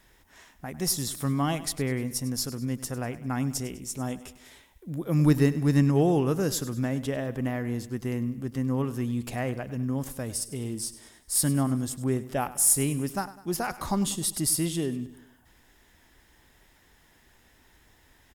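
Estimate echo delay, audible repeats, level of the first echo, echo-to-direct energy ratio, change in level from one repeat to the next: 100 ms, 4, −16.0 dB, −15.0 dB, −6.0 dB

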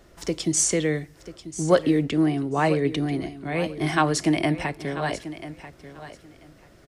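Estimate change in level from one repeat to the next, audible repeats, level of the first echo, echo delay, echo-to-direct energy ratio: −15.0 dB, 2, −14.0 dB, 989 ms, −14.0 dB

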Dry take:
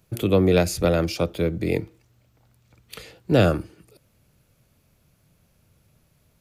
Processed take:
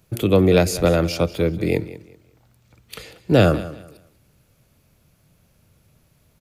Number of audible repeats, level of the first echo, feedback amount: 2, −16.5 dB, 26%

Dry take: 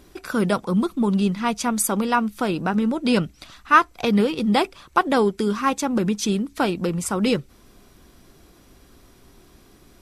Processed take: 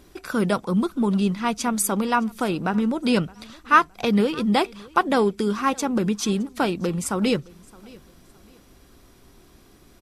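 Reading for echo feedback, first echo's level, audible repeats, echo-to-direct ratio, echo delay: 32%, −24.0 dB, 2, −23.5 dB, 616 ms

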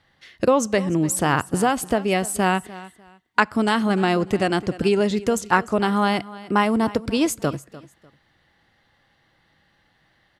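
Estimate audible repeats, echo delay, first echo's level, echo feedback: 2, 298 ms, −18.0 dB, 25%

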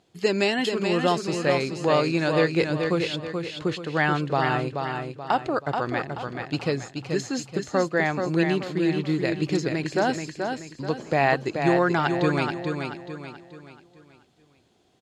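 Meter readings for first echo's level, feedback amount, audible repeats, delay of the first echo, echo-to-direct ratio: −5.5 dB, 40%, 4, 431 ms, −4.5 dB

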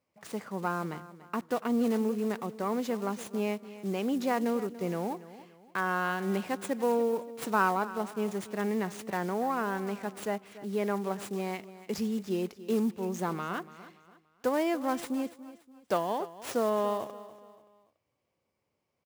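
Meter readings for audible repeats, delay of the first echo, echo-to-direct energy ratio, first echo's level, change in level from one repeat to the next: 3, 287 ms, −15.5 dB, −16.0 dB, −8.5 dB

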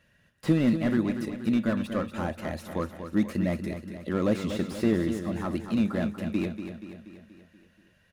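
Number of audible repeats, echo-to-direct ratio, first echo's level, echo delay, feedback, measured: 6, −7.5 dB, −9.0 dB, 239 ms, 55%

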